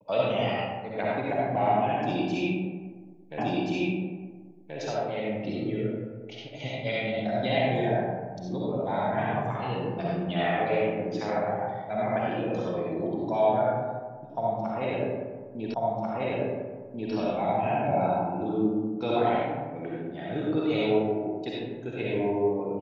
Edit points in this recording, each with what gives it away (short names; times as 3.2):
3.38 repeat of the last 1.38 s
15.74 repeat of the last 1.39 s